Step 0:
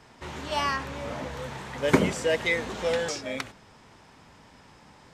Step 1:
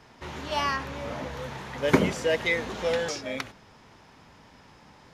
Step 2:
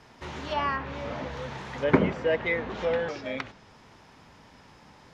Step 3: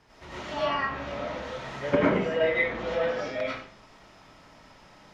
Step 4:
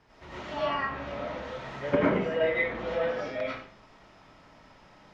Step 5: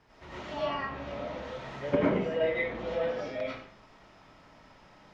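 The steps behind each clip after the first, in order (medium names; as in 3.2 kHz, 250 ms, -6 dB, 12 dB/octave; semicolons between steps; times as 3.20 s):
peaking EQ 8.1 kHz -9.5 dB 0.23 oct
low-pass that closes with the level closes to 2.2 kHz, closed at -26 dBFS
reverberation RT60 0.45 s, pre-delay 60 ms, DRR -8.5 dB; trim -7.5 dB
low-pass 3.9 kHz 6 dB/octave; trim -1.5 dB
dynamic bell 1.5 kHz, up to -5 dB, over -43 dBFS, Q 1.1; trim -1 dB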